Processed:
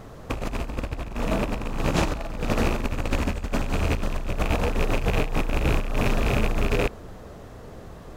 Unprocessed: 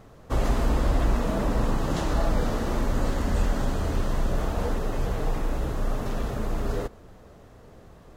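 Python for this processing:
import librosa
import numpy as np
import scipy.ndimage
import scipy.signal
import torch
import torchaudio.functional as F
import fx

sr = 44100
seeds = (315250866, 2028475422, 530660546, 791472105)

y = fx.rattle_buzz(x, sr, strikes_db=-35.0, level_db=-24.0)
y = fx.over_compress(y, sr, threshold_db=-27.0, ratio=-0.5)
y = y * 10.0 ** (4.0 / 20.0)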